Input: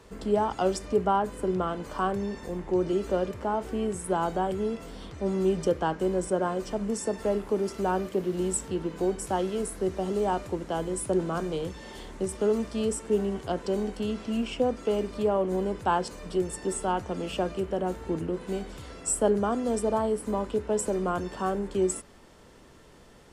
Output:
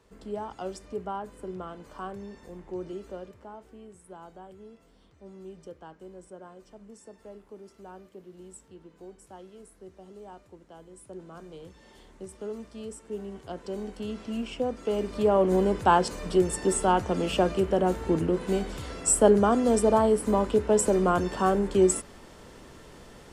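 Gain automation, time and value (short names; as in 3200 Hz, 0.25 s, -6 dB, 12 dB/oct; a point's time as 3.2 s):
2.84 s -10 dB
3.84 s -19 dB
10.88 s -19 dB
11.86 s -11.5 dB
13.01 s -11.5 dB
14.21 s -3.5 dB
14.74 s -3.5 dB
15.46 s +5 dB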